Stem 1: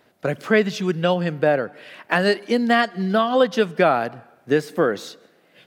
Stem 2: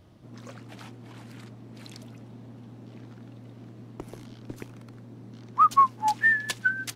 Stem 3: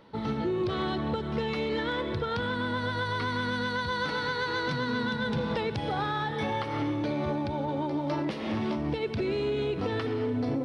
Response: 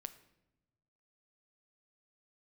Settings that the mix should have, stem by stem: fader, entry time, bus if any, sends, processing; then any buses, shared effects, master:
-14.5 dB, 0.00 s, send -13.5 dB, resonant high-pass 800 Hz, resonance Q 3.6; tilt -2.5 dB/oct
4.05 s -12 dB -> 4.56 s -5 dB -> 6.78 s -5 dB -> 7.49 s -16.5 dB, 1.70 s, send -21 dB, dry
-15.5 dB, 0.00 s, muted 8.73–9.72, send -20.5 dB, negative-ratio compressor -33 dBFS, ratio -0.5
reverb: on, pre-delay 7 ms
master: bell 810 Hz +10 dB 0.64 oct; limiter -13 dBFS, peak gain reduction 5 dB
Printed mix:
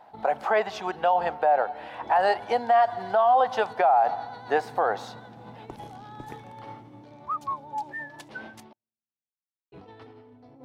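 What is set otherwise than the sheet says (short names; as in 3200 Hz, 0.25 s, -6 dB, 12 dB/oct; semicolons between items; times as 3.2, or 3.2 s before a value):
stem 1 -14.5 dB -> -4.0 dB; reverb return -8.5 dB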